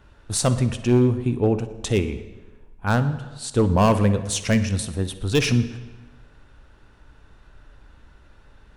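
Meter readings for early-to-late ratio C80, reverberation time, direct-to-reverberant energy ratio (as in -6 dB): 14.0 dB, 1.2 s, 11.0 dB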